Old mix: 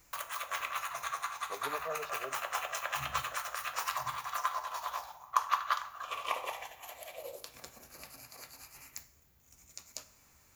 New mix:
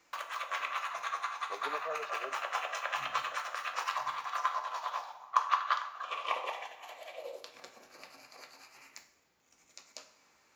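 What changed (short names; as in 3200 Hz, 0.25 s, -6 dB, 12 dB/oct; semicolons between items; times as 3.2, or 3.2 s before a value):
background: send +6.0 dB; master: add three-band isolator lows -23 dB, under 220 Hz, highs -19 dB, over 5700 Hz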